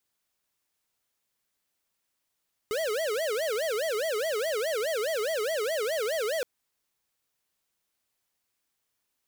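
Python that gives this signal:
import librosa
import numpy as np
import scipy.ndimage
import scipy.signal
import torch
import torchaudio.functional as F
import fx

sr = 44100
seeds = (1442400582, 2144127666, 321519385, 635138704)

y = fx.siren(sr, length_s=3.72, kind='wail', low_hz=415.0, high_hz=659.0, per_s=4.8, wave='square', level_db=-29.0)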